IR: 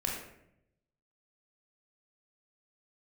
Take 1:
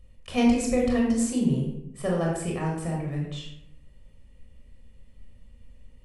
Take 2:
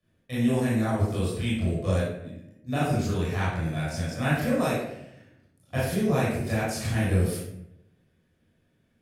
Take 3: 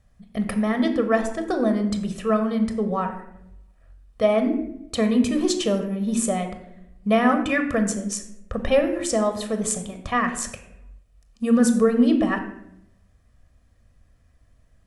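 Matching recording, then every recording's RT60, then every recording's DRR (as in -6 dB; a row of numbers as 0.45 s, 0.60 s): 1; 0.75 s, 0.75 s, 0.75 s; -2.0 dB, -10.0 dB, 6.5 dB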